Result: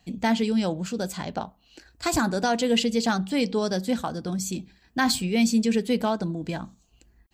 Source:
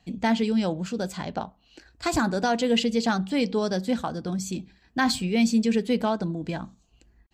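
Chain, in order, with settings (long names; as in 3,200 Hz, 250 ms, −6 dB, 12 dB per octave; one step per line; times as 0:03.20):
high-shelf EQ 8,700 Hz +11 dB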